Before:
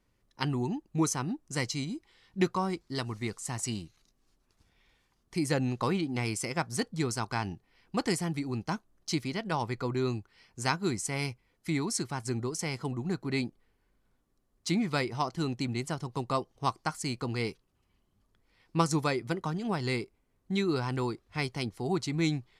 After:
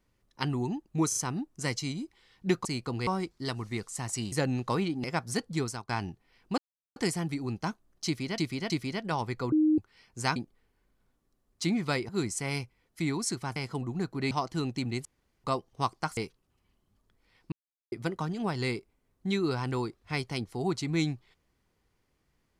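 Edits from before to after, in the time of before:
0:01.08: stutter 0.04 s, 3 plays
0:03.82–0:05.45: remove
0:06.17–0:06.47: remove
0:07.05–0:07.32: fade out, to −18 dB
0:08.01: splice in silence 0.38 s
0:09.11–0:09.43: repeat, 3 plays
0:09.93–0:10.19: beep over 309 Hz −20 dBFS
0:12.24–0:12.66: remove
0:13.41–0:15.14: move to 0:10.77
0:15.88–0:16.27: fill with room tone
0:17.00–0:17.42: move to 0:02.57
0:18.77–0:19.17: silence

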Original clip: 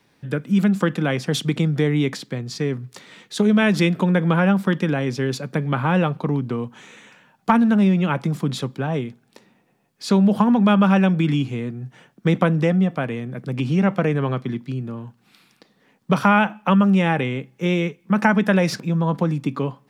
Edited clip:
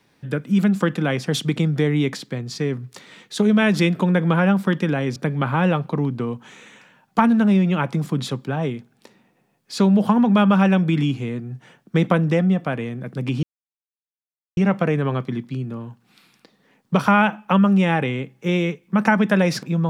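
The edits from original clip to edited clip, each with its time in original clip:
0:05.16–0:05.47: remove
0:13.74: splice in silence 1.14 s

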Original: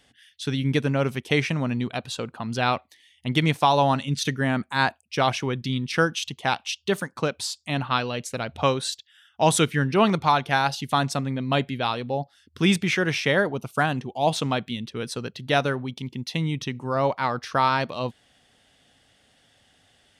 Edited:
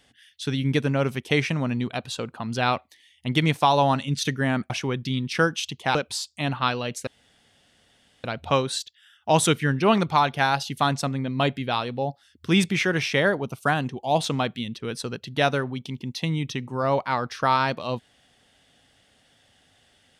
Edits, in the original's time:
0:04.70–0:05.29: remove
0:06.54–0:07.24: remove
0:08.36: splice in room tone 1.17 s

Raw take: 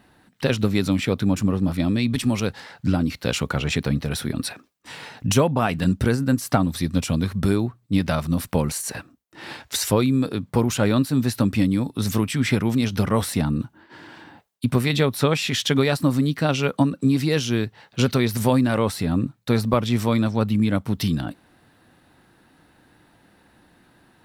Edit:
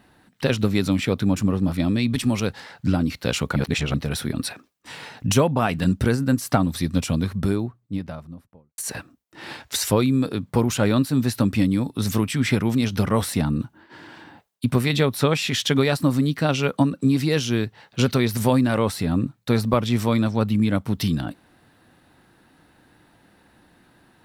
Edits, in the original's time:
0:03.56–0:03.94: reverse
0:06.96–0:08.78: fade out and dull

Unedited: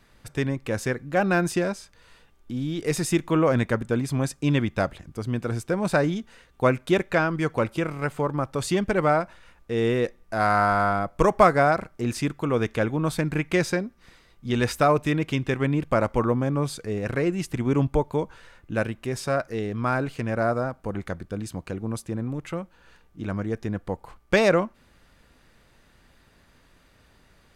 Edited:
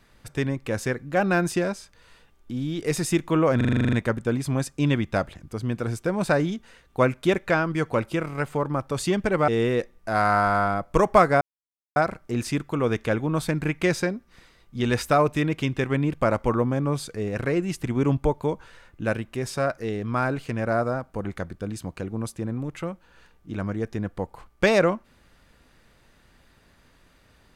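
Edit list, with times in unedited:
0:03.57: stutter 0.04 s, 10 plays
0:09.12–0:09.73: remove
0:11.66: splice in silence 0.55 s

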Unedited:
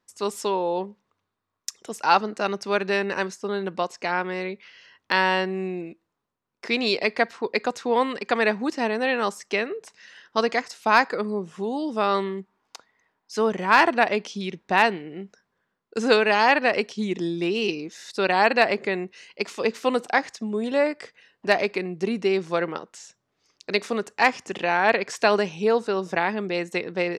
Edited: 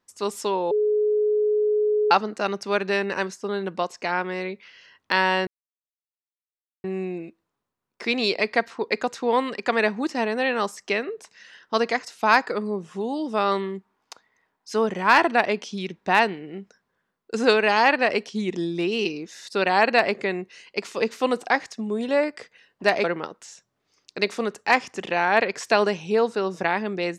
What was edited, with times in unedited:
0:00.71–0:02.11: beep over 422 Hz −18 dBFS
0:05.47: splice in silence 1.37 s
0:21.67–0:22.56: remove

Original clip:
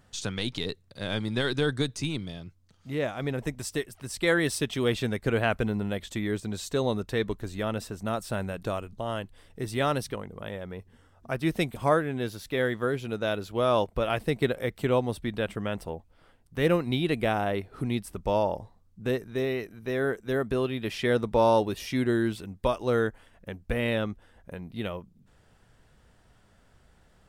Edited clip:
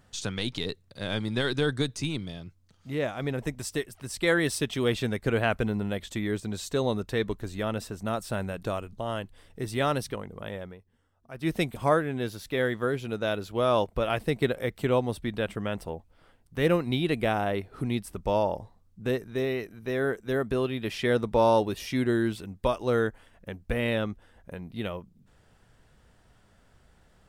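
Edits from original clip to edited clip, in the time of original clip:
0:10.61–0:11.51: duck −12.5 dB, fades 0.18 s

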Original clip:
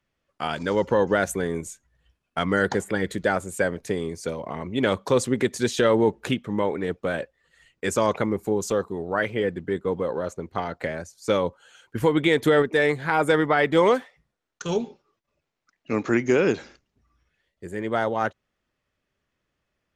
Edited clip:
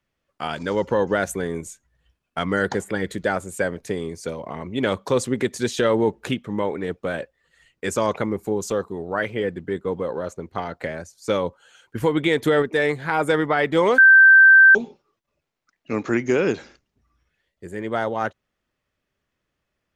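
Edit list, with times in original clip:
0:13.98–0:14.75: beep over 1,560 Hz −7 dBFS

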